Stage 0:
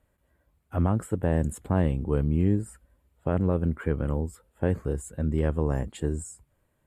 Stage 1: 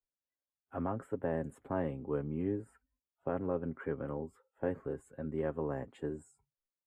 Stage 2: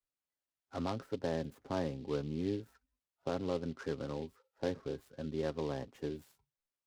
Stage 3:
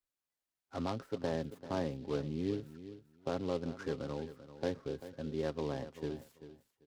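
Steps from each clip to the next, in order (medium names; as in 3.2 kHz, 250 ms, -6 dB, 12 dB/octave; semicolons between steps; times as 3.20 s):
comb 7.4 ms, depth 44%; spectral noise reduction 26 dB; three-band isolator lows -13 dB, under 230 Hz, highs -17 dB, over 2.3 kHz; trim -6.5 dB
delay time shaken by noise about 3.2 kHz, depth 0.035 ms; trim -1 dB
feedback delay 390 ms, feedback 18%, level -13.5 dB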